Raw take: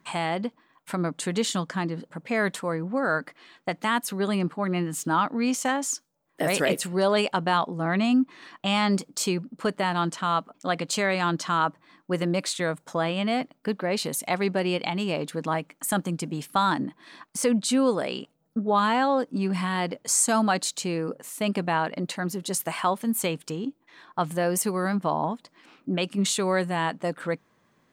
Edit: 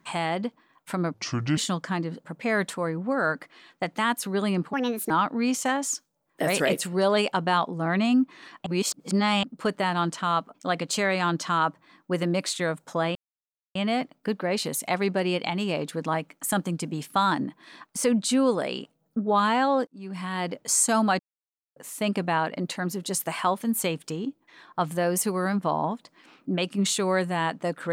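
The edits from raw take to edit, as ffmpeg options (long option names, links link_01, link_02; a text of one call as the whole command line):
ffmpeg -i in.wav -filter_complex "[0:a]asplit=11[link_01][link_02][link_03][link_04][link_05][link_06][link_07][link_08][link_09][link_10][link_11];[link_01]atrim=end=1.144[link_12];[link_02]atrim=start=1.14:end=1.43,asetpts=PTS-STARTPTS,asetrate=29547,aresample=44100,atrim=end_sample=19088,asetpts=PTS-STARTPTS[link_13];[link_03]atrim=start=1.426:end=4.594[link_14];[link_04]atrim=start=4.59:end=5.1,asetpts=PTS-STARTPTS,asetrate=60858,aresample=44100[link_15];[link_05]atrim=start=5.096:end=8.662[link_16];[link_06]atrim=start=8.658:end=9.432,asetpts=PTS-STARTPTS,areverse[link_17];[link_07]atrim=start=9.428:end=13.15,asetpts=PTS-STARTPTS,afade=type=out:start_time=3.718:duration=0.004:curve=hsin,apad=pad_dur=0.6[link_18];[link_08]atrim=start=13.15:end=19.27,asetpts=PTS-STARTPTS,afade=type=in:duration=0.004:curve=hsin,afade=type=out:start_time=6.116:duration=0.004:curve=hsin[link_19];[link_09]atrim=start=19.27:end=20.59,asetpts=PTS-STARTPTS,afade=type=in:duration=0.69,afade=type=out:start_time=1.316:duration=0.004:curve=hsin[link_20];[link_10]atrim=start=20.59:end=21.16,asetpts=PTS-STARTPTS,volume=0[link_21];[link_11]atrim=start=21.16,asetpts=PTS-STARTPTS,afade=type=in:duration=0.004:curve=hsin[link_22];[link_12][link_13]acrossfade=duration=0.004:curve1=hsin:curve2=hsin[link_23];[link_23][link_14]acrossfade=duration=0.004:curve1=hsin:curve2=hsin[link_24];[link_24][link_15]acrossfade=duration=0.004:curve1=hsin:curve2=hsin[link_25];[link_25][link_16]acrossfade=duration=0.004:curve1=hsin:curve2=hsin[link_26];[link_26][link_17]acrossfade=duration=0.004:curve1=hsin:curve2=hsin[link_27];[link_18][link_19][link_20][link_21][link_22]concat=n=5:v=0:a=1[link_28];[link_27][link_28]acrossfade=duration=0.004:curve1=hsin:curve2=hsin" out.wav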